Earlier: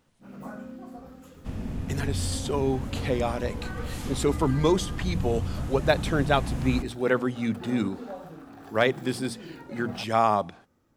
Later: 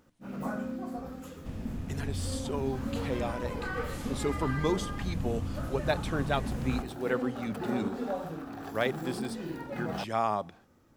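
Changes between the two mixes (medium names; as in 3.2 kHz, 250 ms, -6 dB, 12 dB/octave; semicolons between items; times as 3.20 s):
speech -7.0 dB; first sound +5.0 dB; second sound -5.0 dB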